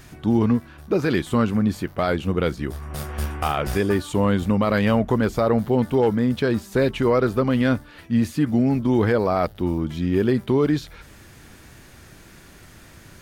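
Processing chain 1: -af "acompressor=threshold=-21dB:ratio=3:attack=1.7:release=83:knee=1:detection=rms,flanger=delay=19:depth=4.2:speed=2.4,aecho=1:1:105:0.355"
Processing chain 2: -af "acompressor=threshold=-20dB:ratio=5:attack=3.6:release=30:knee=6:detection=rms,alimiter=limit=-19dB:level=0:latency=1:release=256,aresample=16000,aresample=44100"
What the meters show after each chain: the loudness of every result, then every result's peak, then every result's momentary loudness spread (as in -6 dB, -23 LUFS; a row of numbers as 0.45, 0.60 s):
-29.0, -29.0 LUFS; -14.0, -19.0 dBFS; 21, 20 LU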